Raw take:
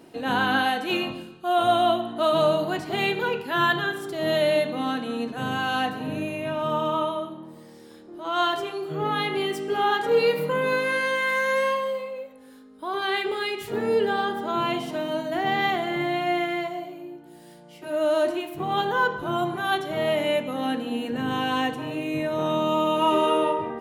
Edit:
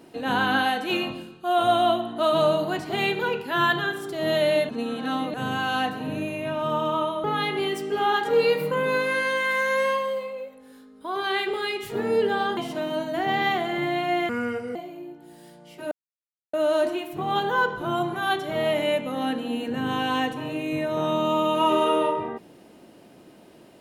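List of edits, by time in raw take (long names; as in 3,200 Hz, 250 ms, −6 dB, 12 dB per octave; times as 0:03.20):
0:04.69–0:05.34: reverse
0:07.24–0:09.02: remove
0:14.35–0:14.75: remove
0:16.47–0:16.79: play speed 69%
0:17.95: splice in silence 0.62 s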